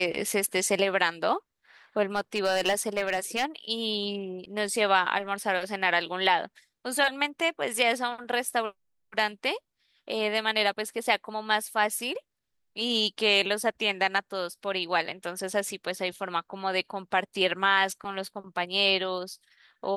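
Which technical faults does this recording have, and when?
2.15–3.44 clipped -19.5 dBFS

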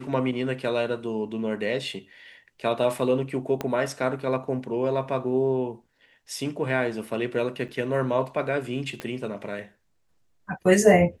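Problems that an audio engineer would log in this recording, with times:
3.61 pop -14 dBFS
7.68–7.69 gap 7.2 ms
9 pop -18 dBFS

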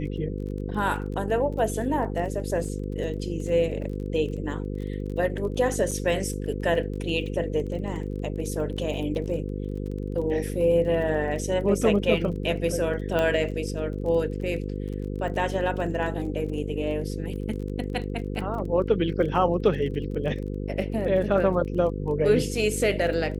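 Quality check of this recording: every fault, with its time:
buzz 50 Hz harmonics 10 -31 dBFS
crackle 25/s -35 dBFS
5.91–5.92 gap 5.9 ms
13.19 pop -14 dBFS

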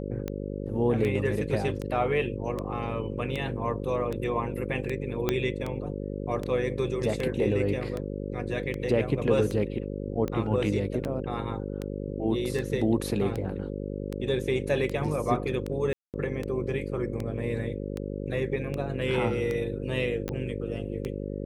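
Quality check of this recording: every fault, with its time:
buzz 50 Hz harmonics 11 -34 dBFS
tick 78 rpm -19 dBFS
5.29 pop -10 dBFS
15.93–16.14 gap 0.208 s
20.29 pop -19 dBFS

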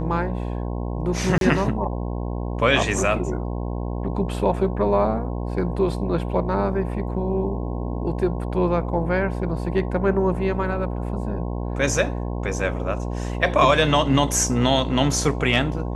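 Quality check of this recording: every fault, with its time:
buzz 60 Hz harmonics 18 -27 dBFS
1.38–1.41 gap 32 ms

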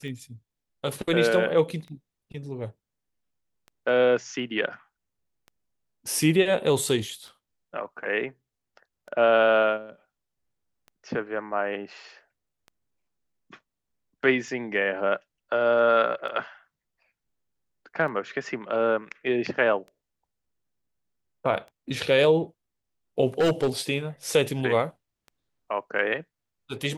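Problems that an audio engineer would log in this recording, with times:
tick 33 1/3 rpm -31 dBFS
23.4–23.69 clipped -17.5 dBFS

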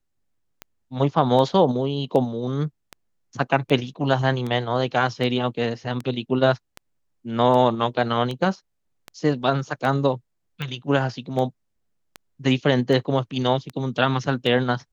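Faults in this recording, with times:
tick 78 rpm -17 dBFS

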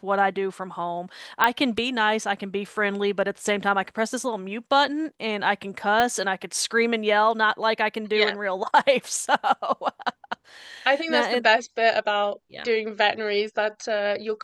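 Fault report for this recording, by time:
1.44 pop -5 dBFS
6 pop -8 dBFS

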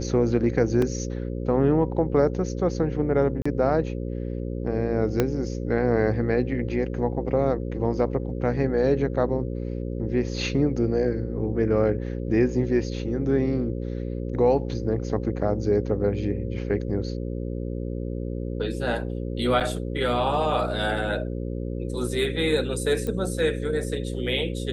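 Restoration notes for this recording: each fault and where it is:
buzz 60 Hz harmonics 9 -30 dBFS
0.82 gap 3.2 ms
3.42–3.46 gap 35 ms
5.2 pop -8 dBFS
19.6–19.61 gap 7.8 ms
23.07 pop -18 dBFS

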